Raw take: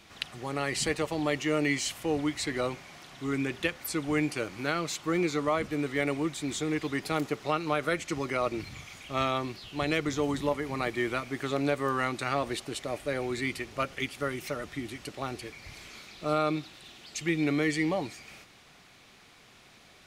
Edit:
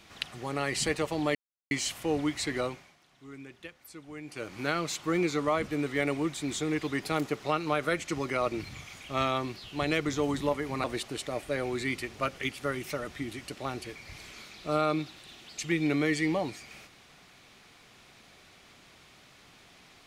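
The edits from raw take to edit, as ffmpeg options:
ffmpeg -i in.wav -filter_complex "[0:a]asplit=6[link_01][link_02][link_03][link_04][link_05][link_06];[link_01]atrim=end=1.35,asetpts=PTS-STARTPTS,afade=type=out:start_time=1.346:duration=0.004:curve=hsin[link_07];[link_02]atrim=start=1.35:end=1.71,asetpts=PTS-STARTPTS,volume=0[link_08];[link_03]atrim=start=1.71:end=2.96,asetpts=PTS-STARTPTS,afade=type=in:duration=0.004:curve=hsin,afade=type=out:start_time=0.86:duration=0.39:silence=0.16788[link_09];[link_04]atrim=start=2.96:end=4.24,asetpts=PTS-STARTPTS,volume=-15.5dB[link_10];[link_05]atrim=start=4.24:end=10.842,asetpts=PTS-STARTPTS,afade=type=in:duration=0.39:silence=0.16788[link_11];[link_06]atrim=start=12.408[link_12];[link_07][link_08][link_09][link_10][link_11]concat=n=5:v=0:a=1[link_13];[link_13][link_12]acrossfade=duration=0.004:curve1=hsin:curve2=hsin" out.wav

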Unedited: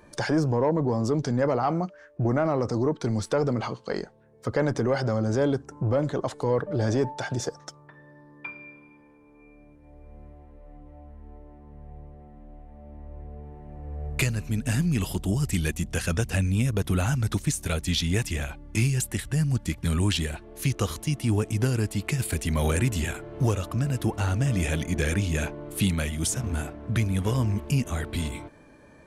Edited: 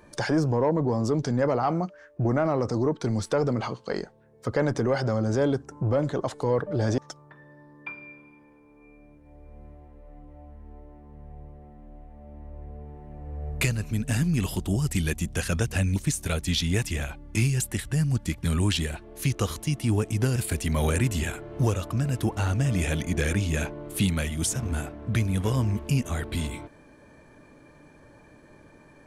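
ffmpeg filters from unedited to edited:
ffmpeg -i in.wav -filter_complex "[0:a]asplit=4[link_01][link_02][link_03][link_04];[link_01]atrim=end=6.982[link_05];[link_02]atrim=start=7.558:end=16.542[link_06];[link_03]atrim=start=17.358:end=21.762[link_07];[link_04]atrim=start=22.168[link_08];[link_05][link_06]acrossfade=duration=0.004:curve1=hsin:curve2=hsin[link_09];[link_09][link_07]acrossfade=duration=0.004:curve1=hsin:curve2=hsin[link_10];[link_10][link_08]acrossfade=duration=0.004:curve1=hsin:curve2=hsin" out.wav

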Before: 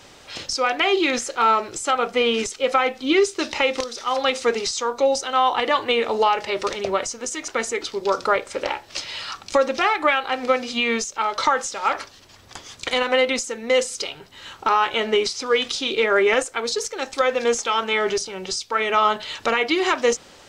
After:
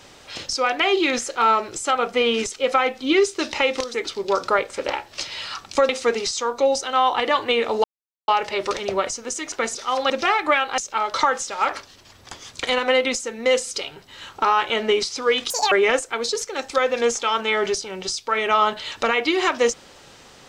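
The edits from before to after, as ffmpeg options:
ffmpeg -i in.wav -filter_complex "[0:a]asplit=9[link_01][link_02][link_03][link_04][link_05][link_06][link_07][link_08][link_09];[link_01]atrim=end=3.942[link_10];[link_02]atrim=start=7.708:end=9.662[link_11];[link_03]atrim=start=4.288:end=6.24,asetpts=PTS-STARTPTS,afade=type=out:start_time=1.948:duration=0.004:curve=hsin,apad=pad_dur=0.44[link_12];[link_04]atrim=start=6.24:end=7.712,asetpts=PTS-STARTPTS,afade=type=in:duration=0.004:curve=hsin[link_13];[link_05]atrim=start=3.938:end=4.292[link_14];[link_06]atrim=start=9.658:end=10.342[link_15];[link_07]atrim=start=11.018:end=15.744[link_16];[link_08]atrim=start=15.74:end=16.15,asetpts=PTS-STARTPTS,asetrate=83349,aresample=44100[link_17];[link_09]atrim=start=16.146[link_18];[link_10][link_11]acrossfade=duration=0.004:curve1=hsin:curve2=hsin[link_19];[link_12][link_13]concat=n=2:v=0:a=1[link_20];[link_19][link_20]acrossfade=duration=0.004:curve1=hsin:curve2=hsin[link_21];[link_21][link_14]acrossfade=duration=0.004:curve1=hsin:curve2=hsin[link_22];[link_22][link_15]acrossfade=duration=0.004:curve1=hsin:curve2=hsin[link_23];[link_23][link_16]acrossfade=duration=0.004:curve1=hsin:curve2=hsin[link_24];[link_24][link_17]acrossfade=duration=0.004:curve1=hsin:curve2=hsin[link_25];[link_25][link_18]acrossfade=duration=0.004:curve1=hsin:curve2=hsin" out.wav

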